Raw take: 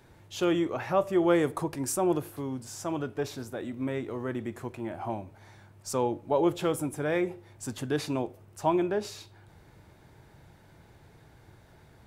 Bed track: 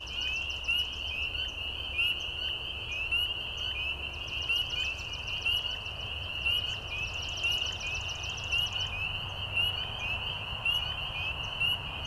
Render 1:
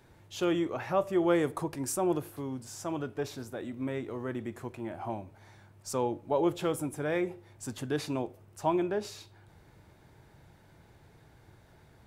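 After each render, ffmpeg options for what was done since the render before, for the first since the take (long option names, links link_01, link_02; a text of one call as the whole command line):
ffmpeg -i in.wav -af "volume=-2.5dB" out.wav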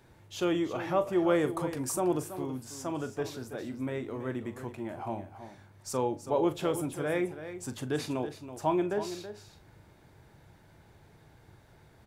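ffmpeg -i in.wav -filter_complex "[0:a]asplit=2[link_01][link_02];[link_02]adelay=39,volume=-13.5dB[link_03];[link_01][link_03]amix=inputs=2:normalize=0,aecho=1:1:327:0.266" out.wav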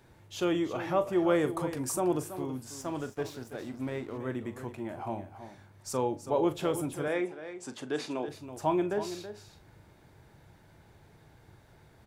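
ffmpeg -i in.wav -filter_complex "[0:a]asettb=1/sr,asplit=3[link_01][link_02][link_03];[link_01]atrim=end=2.814[link_04];[link_02]atrim=start=2.81:end=4.18,asetpts=PTS-STARTPTS,afade=type=in:duration=0.004:curve=qsin,afade=type=out:start_time=1.366:duration=0.004:curve=qsin,aeval=exprs='sgn(val(0))*max(abs(val(0))-0.00282,0)':channel_layout=same[link_05];[link_03]atrim=start=4.176[link_06];[link_04][link_05]acrossfade=duration=0.004:curve1=hsin:curve2=qsin[link_07];[link_07][link_06]acrossfade=duration=0.004:curve1=qsin:curve2=hsin,asettb=1/sr,asplit=3[link_08][link_09][link_10];[link_08]atrim=end=7.084[link_11];[link_09]atrim=start=7.08:end=8.28,asetpts=PTS-STARTPTS,afade=type=in:duration=0.004:curve=qsin,afade=type=out:start_time=1.196:duration=0.004:curve=qsin,highpass=260,lowpass=7300[link_12];[link_10]atrim=start=8.276[link_13];[link_11][link_12]acrossfade=duration=0.004:curve1=hsin:curve2=qsin[link_14];[link_14][link_13]acrossfade=duration=0.004:curve1=qsin:curve2=hsin" out.wav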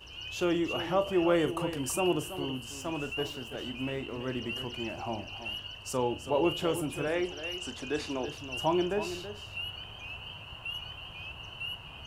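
ffmpeg -i in.wav -i bed.wav -filter_complex "[1:a]volume=-9dB[link_01];[0:a][link_01]amix=inputs=2:normalize=0" out.wav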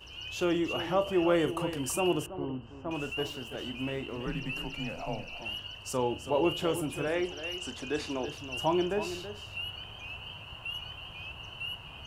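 ffmpeg -i in.wav -filter_complex "[0:a]asettb=1/sr,asplit=3[link_01][link_02][link_03];[link_01]atrim=end=2.264[link_04];[link_02]atrim=start=2.26:end=2.91,asetpts=PTS-STARTPTS,afade=type=in:duration=0.004:curve=qsin,afade=type=out:start_time=0.646:duration=0.004:curve=qsin,lowpass=1200[link_05];[link_03]atrim=start=2.906[link_06];[link_04][link_05]acrossfade=duration=0.004:curve1=hsin:curve2=qsin[link_07];[link_07][link_06]acrossfade=duration=0.004:curve1=qsin:curve2=hsin,asettb=1/sr,asplit=3[link_08][link_09][link_10];[link_08]atrim=end=4.264[link_11];[link_09]atrim=start=4.26:end=5.42,asetpts=PTS-STARTPTS,afade=type=in:duration=0.004:curve=qsin,afade=type=out:start_time=1.156:duration=0.004:curve=qsin,afreqshift=-91[link_12];[link_10]atrim=start=5.416[link_13];[link_11][link_12]acrossfade=duration=0.004:curve1=hsin:curve2=qsin[link_14];[link_14][link_13]acrossfade=duration=0.004:curve1=qsin:curve2=hsin" out.wav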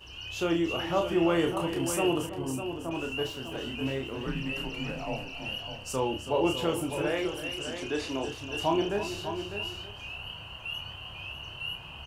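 ffmpeg -i in.wav -filter_complex "[0:a]asplit=2[link_01][link_02];[link_02]adelay=30,volume=-5dB[link_03];[link_01][link_03]amix=inputs=2:normalize=0,asplit=2[link_04][link_05];[link_05]aecho=0:1:602:0.355[link_06];[link_04][link_06]amix=inputs=2:normalize=0" out.wav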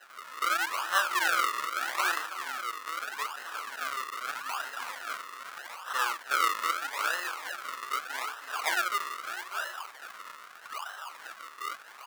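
ffmpeg -i in.wav -af "acrusher=samples=38:mix=1:aa=0.000001:lfo=1:lforange=38:lforate=0.8,highpass=frequency=1300:width_type=q:width=3.2" out.wav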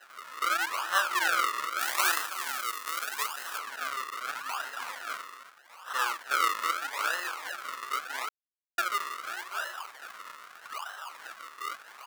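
ffmpeg -i in.wav -filter_complex "[0:a]asettb=1/sr,asplit=3[link_01][link_02][link_03];[link_01]atrim=end=1.794[link_04];[link_02]atrim=start=1.79:end=3.58,asetpts=PTS-STARTPTS,afade=type=in:duration=0.004:curve=qsin,afade=type=out:start_time=1.786:duration=0.004:curve=qsin,highshelf=frequency=4900:gain=10.5[link_05];[link_03]atrim=start=3.576[link_06];[link_04][link_05]acrossfade=duration=0.004:curve1=hsin:curve2=qsin[link_07];[link_07][link_06]acrossfade=duration=0.004:curve1=qsin:curve2=hsin,asplit=5[link_08][link_09][link_10][link_11][link_12];[link_08]atrim=end=5.55,asetpts=PTS-STARTPTS,afade=type=out:start_time=5.23:duration=0.32:silence=0.16788[link_13];[link_09]atrim=start=5.55:end=5.66,asetpts=PTS-STARTPTS,volume=-15.5dB[link_14];[link_10]atrim=start=5.66:end=8.29,asetpts=PTS-STARTPTS,afade=type=in:duration=0.32:silence=0.16788,afade=type=out:start_time=2.626:duration=0.004:curve=hsin[link_15];[link_11]atrim=start=8.29:end=8.78,asetpts=PTS-STARTPTS,volume=0[link_16];[link_12]atrim=start=8.78,asetpts=PTS-STARTPTS,afade=type=in:duration=0.004:curve=hsin[link_17];[link_13][link_14][link_15][link_16][link_17]concat=n=5:v=0:a=1" out.wav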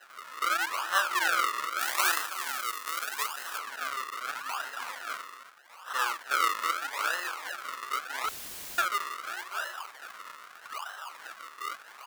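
ffmpeg -i in.wav -filter_complex "[0:a]asettb=1/sr,asplit=3[link_01][link_02][link_03];[link_01]atrim=end=8.244[link_04];[link_02]atrim=start=8.24:end=8.86,asetpts=PTS-STARTPTS,afade=type=in:duration=0.004:curve=qsin,afade=type=out:start_time=0.616:duration=0.004:curve=qsin,aeval=exprs='val(0)+0.5*0.0335*sgn(val(0))':channel_layout=same[link_05];[link_03]atrim=start=8.856[link_06];[link_04][link_05]acrossfade=duration=0.004:curve1=hsin:curve2=qsin[link_07];[link_07][link_06]acrossfade=duration=0.004:curve1=qsin:curve2=hsin" out.wav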